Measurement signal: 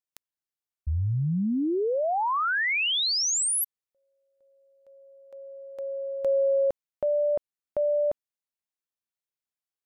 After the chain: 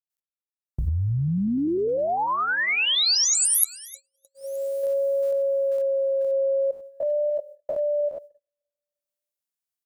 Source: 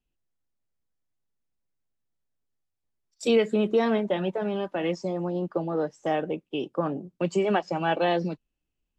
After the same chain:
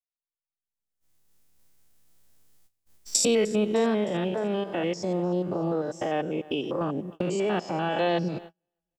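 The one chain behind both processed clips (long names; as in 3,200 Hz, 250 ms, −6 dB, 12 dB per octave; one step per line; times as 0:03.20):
spectrum averaged block by block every 100 ms
camcorder AGC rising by 34 dB per second, up to +35 dB
high-shelf EQ 5,000 Hz +10 dB
on a send: repeating echo 305 ms, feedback 55%, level −21 dB
on the sum: noise gate −40 dBFS, range −37 dB
pitch vibrato 0.44 Hz 15 cents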